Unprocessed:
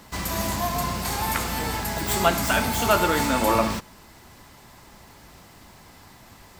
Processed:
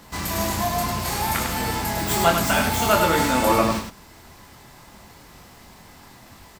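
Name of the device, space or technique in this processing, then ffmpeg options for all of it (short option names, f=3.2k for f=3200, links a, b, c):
slapback doubling: -filter_complex "[0:a]asplit=3[a][b][c];[b]adelay=24,volume=-4.5dB[d];[c]adelay=100,volume=-5.5dB[e];[a][d][e]amix=inputs=3:normalize=0"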